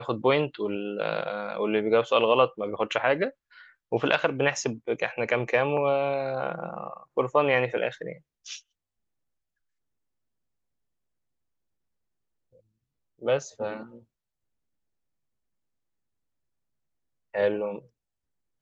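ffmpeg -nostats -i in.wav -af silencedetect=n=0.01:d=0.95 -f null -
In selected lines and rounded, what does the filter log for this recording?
silence_start: 8.59
silence_end: 13.22 | silence_duration: 4.63
silence_start: 13.97
silence_end: 17.34 | silence_duration: 3.37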